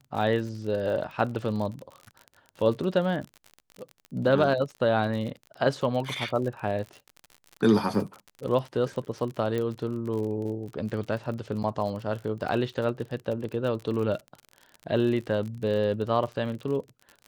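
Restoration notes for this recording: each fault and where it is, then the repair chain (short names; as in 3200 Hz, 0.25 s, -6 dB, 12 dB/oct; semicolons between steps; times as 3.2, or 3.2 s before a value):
crackle 42/s -34 dBFS
9.58 pop
11.63–11.64 gap 8.6 ms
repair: de-click; interpolate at 11.63, 8.6 ms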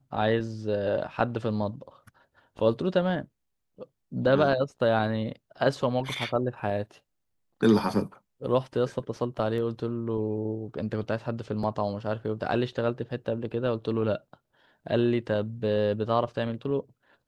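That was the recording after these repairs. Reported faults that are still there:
9.58 pop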